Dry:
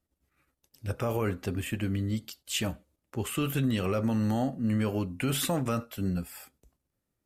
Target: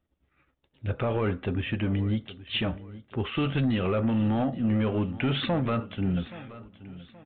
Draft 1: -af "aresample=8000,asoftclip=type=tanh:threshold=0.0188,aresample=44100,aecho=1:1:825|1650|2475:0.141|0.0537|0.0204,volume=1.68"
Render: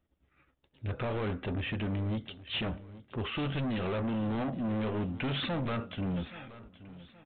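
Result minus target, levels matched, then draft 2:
saturation: distortion +10 dB
-af "aresample=8000,asoftclip=type=tanh:threshold=0.0708,aresample=44100,aecho=1:1:825|1650|2475:0.141|0.0537|0.0204,volume=1.68"

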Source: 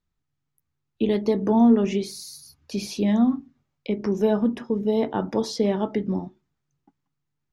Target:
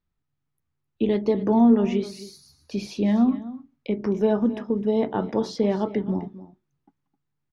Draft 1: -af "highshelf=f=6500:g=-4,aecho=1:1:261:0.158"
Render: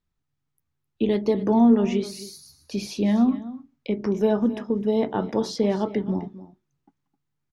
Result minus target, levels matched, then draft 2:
8 kHz band +5.5 dB
-af "highshelf=f=6500:g=-15,aecho=1:1:261:0.158"

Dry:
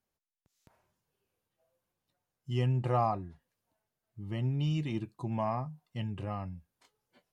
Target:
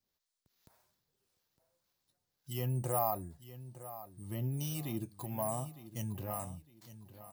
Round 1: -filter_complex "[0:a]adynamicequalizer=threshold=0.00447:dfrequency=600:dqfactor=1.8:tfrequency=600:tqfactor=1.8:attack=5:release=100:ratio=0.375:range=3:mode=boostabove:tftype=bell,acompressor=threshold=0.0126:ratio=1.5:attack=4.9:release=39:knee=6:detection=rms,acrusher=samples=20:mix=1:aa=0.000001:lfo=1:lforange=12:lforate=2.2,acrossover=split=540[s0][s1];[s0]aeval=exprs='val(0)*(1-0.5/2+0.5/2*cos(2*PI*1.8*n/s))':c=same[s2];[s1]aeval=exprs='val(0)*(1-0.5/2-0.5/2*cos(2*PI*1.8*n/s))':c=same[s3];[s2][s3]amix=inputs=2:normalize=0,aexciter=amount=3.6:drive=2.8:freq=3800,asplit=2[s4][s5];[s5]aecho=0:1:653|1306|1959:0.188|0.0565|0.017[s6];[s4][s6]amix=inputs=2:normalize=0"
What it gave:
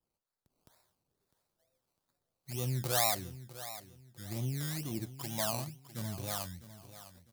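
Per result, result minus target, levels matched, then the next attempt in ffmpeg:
decimation with a swept rate: distortion +15 dB; echo 255 ms early
-filter_complex "[0:a]adynamicequalizer=threshold=0.00447:dfrequency=600:dqfactor=1.8:tfrequency=600:tqfactor=1.8:attack=5:release=100:ratio=0.375:range=3:mode=boostabove:tftype=bell,acompressor=threshold=0.0126:ratio=1.5:attack=4.9:release=39:knee=6:detection=rms,acrusher=samples=4:mix=1:aa=0.000001:lfo=1:lforange=2.4:lforate=2.2,acrossover=split=540[s0][s1];[s0]aeval=exprs='val(0)*(1-0.5/2+0.5/2*cos(2*PI*1.8*n/s))':c=same[s2];[s1]aeval=exprs='val(0)*(1-0.5/2-0.5/2*cos(2*PI*1.8*n/s))':c=same[s3];[s2][s3]amix=inputs=2:normalize=0,aexciter=amount=3.6:drive=2.8:freq=3800,asplit=2[s4][s5];[s5]aecho=0:1:653|1306|1959:0.188|0.0565|0.017[s6];[s4][s6]amix=inputs=2:normalize=0"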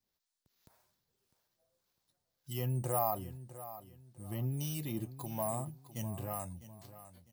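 echo 255 ms early
-filter_complex "[0:a]adynamicequalizer=threshold=0.00447:dfrequency=600:dqfactor=1.8:tfrequency=600:tqfactor=1.8:attack=5:release=100:ratio=0.375:range=3:mode=boostabove:tftype=bell,acompressor=threshold=0.0126:ratio=1.5:attack=4.9:release=39:knee=6:detection=rms,acrusher=samples=4:mix=1:aa=0.000001:lfo=1:lforange=2.4:lforate=2.2,acrossover=split=540[s0][s1];[s0]aeval=exprs='val(0)*(1-0.5/2+0.5/2*cos(2*PI*1.8*n/s))':c=same[s2];[s1]aeval=exprs='val(0)*(1-0.5/2-0.5/2*cos(2*PI*1.8*n/s))':c=same[s3];[s2][s3]amix=inputs=2:normalize=0,aexciter=amount=3.6:drive=2.8:freq=3800,asplit=2[s4][s5];[s5]aecho=0:1:908|1816|2724:0.188|0.0565|0.017[s6];[s4][s6]amix=inputs=2:normalize=0"

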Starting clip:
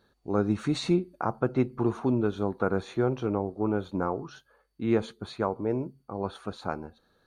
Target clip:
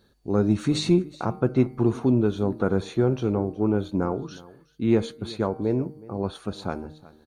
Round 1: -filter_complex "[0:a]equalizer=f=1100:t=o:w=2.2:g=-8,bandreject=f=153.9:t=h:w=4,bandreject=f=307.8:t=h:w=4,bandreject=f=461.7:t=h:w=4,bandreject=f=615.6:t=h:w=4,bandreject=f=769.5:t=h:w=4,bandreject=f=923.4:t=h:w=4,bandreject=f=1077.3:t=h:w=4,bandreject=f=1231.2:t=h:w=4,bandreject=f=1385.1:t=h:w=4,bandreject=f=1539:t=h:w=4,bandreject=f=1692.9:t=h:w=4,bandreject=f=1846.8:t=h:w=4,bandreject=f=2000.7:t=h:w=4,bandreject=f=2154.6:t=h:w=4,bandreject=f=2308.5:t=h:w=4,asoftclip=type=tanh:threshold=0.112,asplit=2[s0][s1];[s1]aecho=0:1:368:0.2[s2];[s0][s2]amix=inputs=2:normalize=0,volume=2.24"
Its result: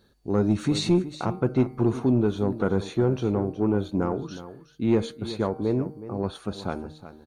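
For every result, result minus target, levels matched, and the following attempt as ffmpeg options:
saturation: distortion +11 dB; echo-to-direct +6.5 dB
-filter_complex "[0:a]equalizer=f=1100:t=o:w=2.2:g=-8,bandreject=f=153.9:t=h:w=4,bandreject=f=307.8:t=h:w=4,bandreject=f=461.7:t=h:w=4,bandreject=f=615.6:t=h:w=4,bandreject=f=769.5:t=h:w=4,bandreject=f=923.4:t=h:w=4,bandreject=f=1077.3:t=h:w=4,bandreject=f=1231.2:t=h:w=4,bandreject=f=1385.1:t=h:w=4,bandreject=f=1539:t=h:w=4,bandreject=f=1692.9:t=h:w=4,bandreject=f=1846.8:t=h:w=4,bandreject=f=2000.7:t=h:w=4,bandreject=f=2154.6:t=h:w=4,bandreject=f=2308.5:t=h:w=4,asoftclip=type=tanh:threshold=0.237,asplit=2[s0][s1];[s1]aecho=0:1:368:0.2[s2];[s0][s2]amix=inputs=2:normalize=0,volume=2.24"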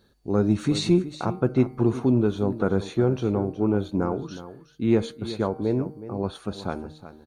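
echo-to-direct +6.5 dB
-filter_complex "[0:a]equalizer=f=1100:t=o:w=2.2:g=-8,bandreject=f=153.9:t=h:w=4,bandreject=f=307.8:t=h:w=4,bandreject=f=461.7:t=h:w=4,bandreject=f=615.6:t=h:w=4,bandreject=f=769.5:t=h:w=4,bandreject=f=923.4:t=h:w=4,bandreject=f=1077.3:t=h:w=4,bandreject=f=1231.2:t=h:w=4,bandreject=f=1385.1:t=h:w=4,bandreject=f=1539:t=h:w=4,bandreject=f=1692.9:t=h:w=4,bandreject=f=1846.8:t=h:w=4,bandreject=f=2000.7:t=h:w=4,bandreject=f=2154.6:t=h:w=4,bandreject=f=2308.5:t=h:w=4,asoftclip=type=tanh:threshold=0.237,asplit=2[s0][s1];[s1]aecho=0:1:368:0.0944[s2];[s0][s2]amix=inputs=2:normalize=0,volume=2.24"

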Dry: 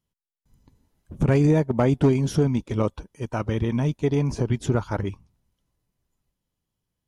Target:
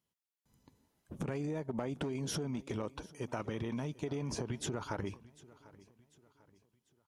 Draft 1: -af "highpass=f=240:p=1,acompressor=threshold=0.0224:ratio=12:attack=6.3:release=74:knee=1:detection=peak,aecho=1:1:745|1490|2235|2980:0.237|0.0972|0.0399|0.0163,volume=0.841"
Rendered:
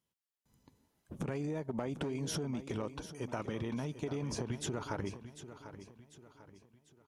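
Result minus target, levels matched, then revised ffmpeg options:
echo-to-direct +8.5 dB
-af "highpass=f=240:p=1,acompressor=threshold=0.0224:ratio=12:attack=6.3:release=74:knee=1:detection=peak,aecho=1:1:745|1490|2235:0.0891|0.0365|0.015,volume=0.841"

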